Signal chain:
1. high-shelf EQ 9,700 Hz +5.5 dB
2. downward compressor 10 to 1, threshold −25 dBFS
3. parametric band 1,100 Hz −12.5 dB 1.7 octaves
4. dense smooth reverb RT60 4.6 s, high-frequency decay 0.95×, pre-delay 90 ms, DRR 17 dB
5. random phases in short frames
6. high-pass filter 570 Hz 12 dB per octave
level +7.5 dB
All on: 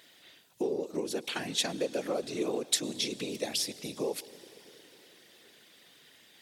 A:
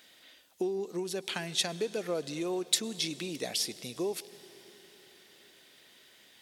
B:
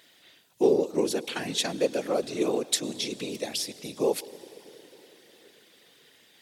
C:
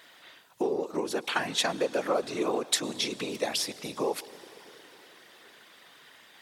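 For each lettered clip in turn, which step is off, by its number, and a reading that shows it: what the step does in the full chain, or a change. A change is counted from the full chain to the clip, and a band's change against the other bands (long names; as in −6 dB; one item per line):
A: 5, 125 Hz band +3.0 dB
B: 2, average gain reduction 3.0 dB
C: 3, 1 kHz band +7.5 dB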